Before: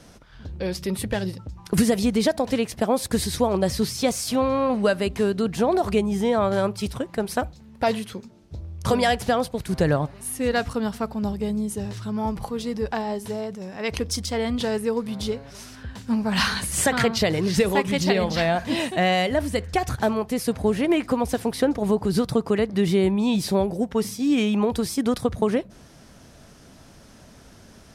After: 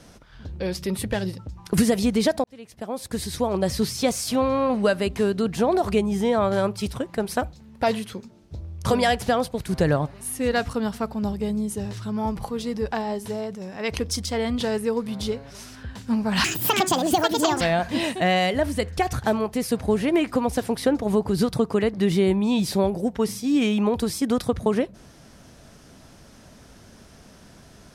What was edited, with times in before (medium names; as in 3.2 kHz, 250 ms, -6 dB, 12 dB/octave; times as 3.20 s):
2.44–3.80 s: fade in
16.44–18.37 s: speed 165%